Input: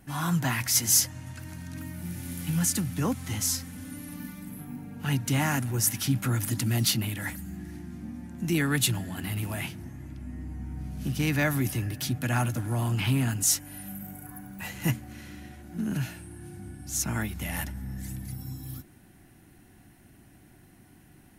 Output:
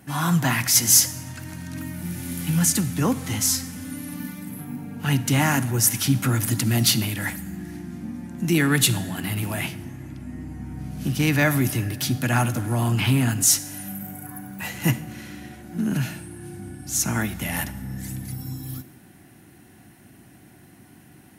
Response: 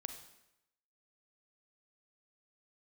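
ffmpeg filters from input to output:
-filter_complex "[0:a]highpass=96,asplit=2[a][b];[1:a]atrim=start_sample=2205[c];[b][c]afir=irnorm=-1:irlink=0,volume=-1dB[d];[a][d]amix=inputs=2:normalize=0,volume=2dB"

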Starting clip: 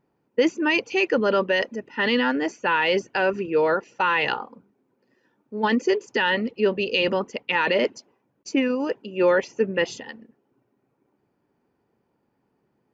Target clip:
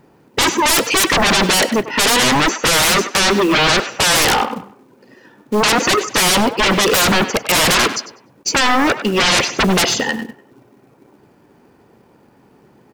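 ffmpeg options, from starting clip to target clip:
-filter_complex "[0:a]asettb=1/sr,asplit=3[a][b][c];[a]atrim=end=2.064[d];[b]atrim=start=2.06:end=3.68,asetpts=PTS-STARTPTS,afade=t=in:d=0.004:c=qsin,afade=t=out:st=1.616:d=0.004:c=qsin,highpass=f=200:w=0.5412,highpass=f=200:w=1.3066[e];[c]atrim=start=3.676[f];[d][e]acrossfade=d=0.004:c1=hsin:c2=qsin[g];[g][f]acrossfade=d=0.004:c1=qsin:c2=hsin,aeval=exprs='0.355*sin(PI/2*7.94*val(0)/0.355)':c=same,acrossover=split=510[h][i];[h]acrusher=bits=4:mode=log:mix=0:aa=0.000001[j];[i]asplit=2[k][l];[l]adelay=98,lowpass=f=3.1k:p=1,volume=-9.5dB,asplit=2[m][n];[n]adelay=98,lowpass=f=3.1k:p=1,volume=0.33,asplit=2[o][p];[p]adelay=98,lowpass=f=3.1k:p=1,volume=0.33,asplit=2[q][r];[r]adelay=98,lowpass=f=3.1k:p=1,volume=0.33[s];[k][m][o][q][s]amix=inputs=5:normalize=0[t];[j][t]amix=inputs=2:normalize=0,volume=-1.5dB"

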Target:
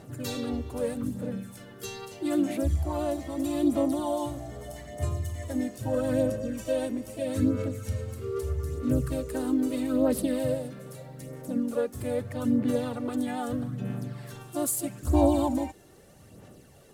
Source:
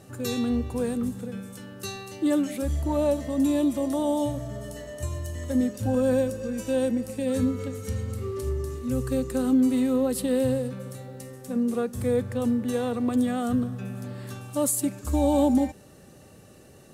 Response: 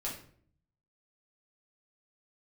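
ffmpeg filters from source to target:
-filter_complex "[0:a]aphaser=in_gain=1:out_gain=1:delay=2.9:decay=0.51:speed=0.79:type=sinusoidal,asplit=2[a][b];[b]asetrate=52444,aresample=44100,atempo=0.840896,volume=-6dB[c];[a][c]amix=inputs=2:normalize=0,volume=-5dB"

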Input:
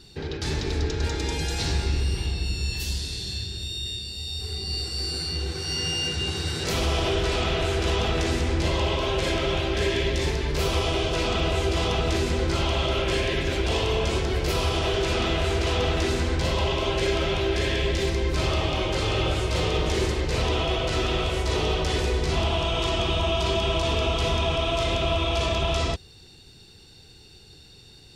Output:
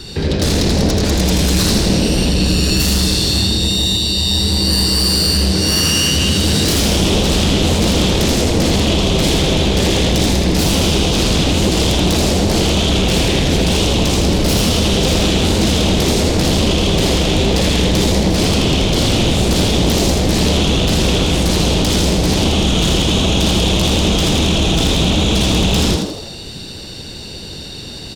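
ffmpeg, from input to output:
-filter_complex "[0:a]acrossover=split=320|3200[a][b][c];[b]acompressor=threshold=-43dB:ratio=12[d];[a][d][c]amix=inputs=3:normalize=0,aeval=exprs='0.237*sin(PI/2*5.01*val(0)/0.237)':c=same,asplit=7[e][f][g][h][i][j][k];[f]adelay=81,afreqshift=120,volume=-4dB[l];[g]adelay=162,afreqshift=240,volume=-10.7dB[m];[h]adelay=243,afreqshift=360,volume=-17.5dB[n];[i]adelay=324,afreqshift=480,volume=-24.2dB[o];[j]adelay=405,afreqshift=600,volume=-31dB[p];[k]adelay=486,afreqshift=720,volume=-37.7dB[q];[e][l][m][n][o][p][q]amix=inputs=7:normalize=0"

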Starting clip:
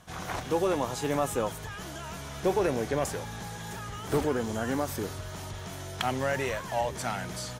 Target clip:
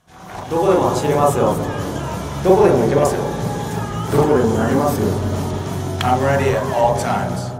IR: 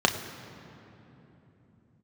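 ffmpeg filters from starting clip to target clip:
-filter_complex "[0:a]dynaudnorm=f=140:g=7:m=16dB,asplit=2[a][b];[1:a]atrim=start_sample=2205,lowpass=f=1.3k:w=0.5412,lowpass=f=1.3k:w=1.3066,adelay=40[c];[b][c]afir=irnorm=-1:irlink=0,volume=-11dB[d];[a][d]amix=inputs=2:normalize=0,volume=-6dB"

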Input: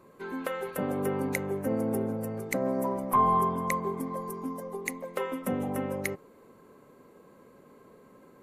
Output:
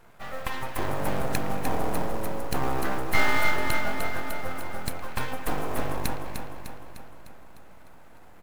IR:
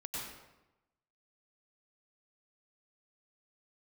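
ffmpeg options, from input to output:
-filter_complex "[0:a]asplit=2[a][b];[1:a]atrim=start_sample=2205,lowpass=2.5k,adelay=113[c];[b][c]afir=irnorm=-1:irlink=0,volume=-13dB[d];[a][d]amix=inputs=2:normalize=0,aeval=exprs='abs(val(0))':c=same,acrusher=bits=6:mode=log:mix=0:aa=0.000001,aecho=1:1:302|604|906|1208|1510|1812|2114:0.447|0.25|0.14|0.0784|0.0439|0.0246|0.0138,volume=3.5dB"

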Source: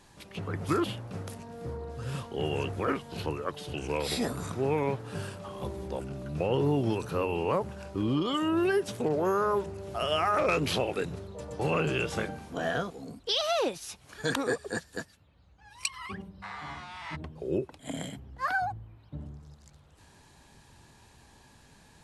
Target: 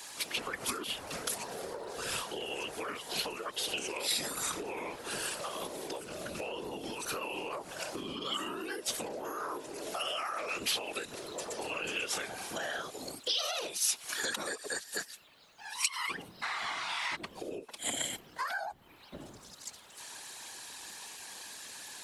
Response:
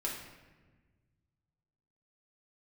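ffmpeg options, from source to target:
-af "highpass=310,afftfilt=real='hypot(re,im)*cos(2*PI*random(0))':imag='hypot(re,im)*sin(2*PI*random(1))':win_size=512:overlap=0.75,alimiter=level_in=7dB:limit=-24dB:level=0:latency=1:release=99,volume=-7dB,acompressor=threshold=-49dB:ratio=6,highshelf=f=5k:g=-8,crystalizer=i=10:c=0,volume=9dB"

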